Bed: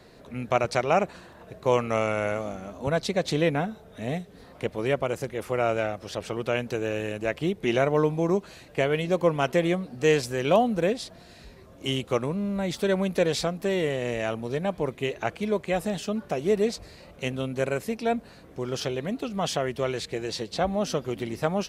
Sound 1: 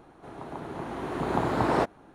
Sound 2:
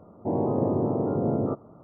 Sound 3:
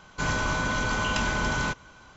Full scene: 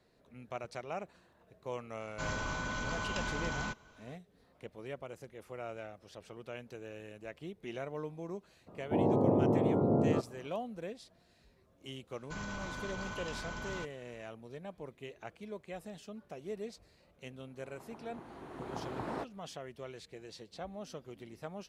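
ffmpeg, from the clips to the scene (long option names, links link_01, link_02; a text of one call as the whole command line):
ffmpeg -i bed.wav -i cue0.wav -i cue1.wav -i cue2.wav -filter_complex "[3:a]asplit=2[link_01][link_02];[0:a]volume=-18dB[link_03];[link_02]alimiter=limit=-19dB:level=0:latency=1:release=31[link_04];[link_01]atrim=end=2.16,asetpts=PTS-STARTPTS,volume=-10.5dB,afade=type=in:duration=0.004:curve=hsin,afade=type=out:start_time=2.156:duration=0.004:curve=hsin,adelay=2000[link_05];[2:a]atrim=end=1.83,asetpts=PTS-STARTPTS,volume=-3dB,afade=type=in:duration=0.02,afade=type=out:start_time=1.81:duration=0.02,adelay=381906S[link_06];[link_04]atrim=end=2.16,asetpts=PTS-STARTPTS,volume=-14dB,afade=type=in:duration=0.004:curve=hsin,afade=type=out:start_time=2.156:duration=0.004:curve=hsin,adelay=12120[link_07];[1:a]atrim=end=2.14,asetpts=PTS-STARTPTS,volume=-15dB,afade=type=in:duration=0.004:curve=hsin,afade=type=out:start_time=2.136:duration=0.004:curve=hsin,adelay=17390[link_08];[link_03][link_05][link_06][link_07][link_08]amix=inputs=5:normalize=0" out.wav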